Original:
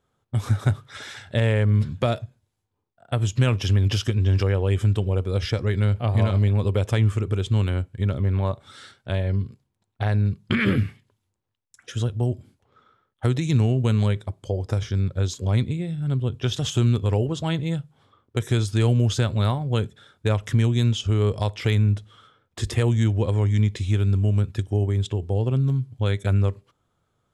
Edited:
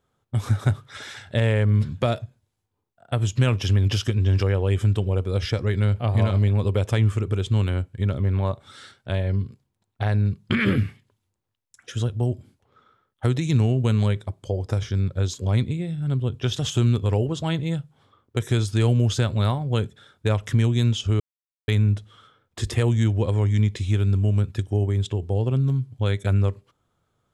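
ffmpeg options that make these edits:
ffmpeg -i in.wav -filter_complex "[0:a]asplit=3[link_01][link_02][link_03];[link_01]atrim=end=21.2,asetpts=PTS-STARTPTS,afade=type=out:start_time=21.196:duration=0.004:curve=hsin[link_04];[link_02]atrim=start=21.2:end=21.68,asetpts=PTS-STARTPTS,volume=0[link_05];[link_03]atrim=start=21.68,asetpts=PTS-STARTPTS,afade=type=in:duration=0.004:curve=hsin[link_06];[link_04][link_05][link_06]concat=n=3:v=0:a=1" out.wav

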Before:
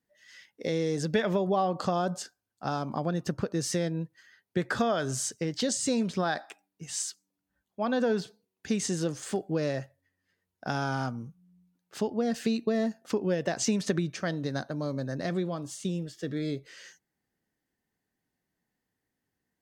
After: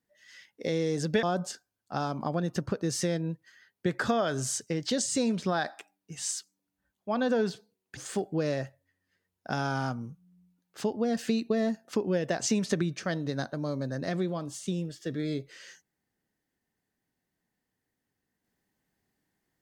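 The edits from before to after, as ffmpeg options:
ffmpeg -i in.wav -filter_complex "[0:a]asplit=3[link_01][link_02][link_03];[link_01]atrim=end=1.232[link_04];[link_02]atrim=start=1.938:end=8.682[link_05];[link_03]atrim=start=9.138[link_06];[link_04][link_05]acrossfade=duration=0.004:curve1=hsin:curve2=hsin[link_07];[link_07][link_06]acrossfade=duration=0.004:curve1=hsin:curve2=hsin" out.wav

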